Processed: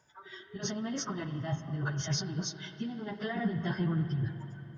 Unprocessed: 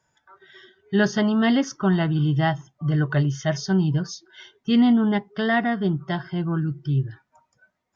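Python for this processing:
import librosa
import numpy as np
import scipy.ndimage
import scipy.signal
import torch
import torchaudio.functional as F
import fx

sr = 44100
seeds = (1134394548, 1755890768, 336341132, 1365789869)

y = fx.over_compress(x, sr, threshold_db=-28.0, ratio=-1.0)
y = fx.stretch_vocoder_free(y, sr, factor=0.6)
y = fx.rev_spring(y, sr, rt60_s=3.6, pass_ms=(43, 55), chirp_ms=45, drr_db=8.5)
y = F.gain(torch.from_numpy(y), -2.5).numpy()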